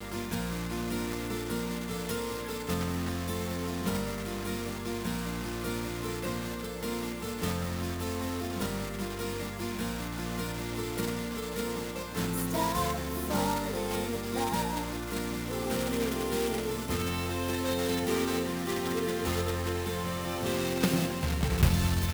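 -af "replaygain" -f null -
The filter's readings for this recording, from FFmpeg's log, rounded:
track_gain = +14.2 dB
track_peak = 0.167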